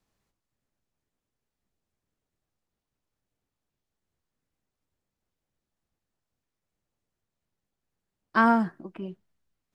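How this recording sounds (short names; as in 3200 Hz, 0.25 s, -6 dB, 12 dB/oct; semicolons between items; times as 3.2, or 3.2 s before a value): noise floor -87 dBFS; spectral tilt -1.0 dB/oct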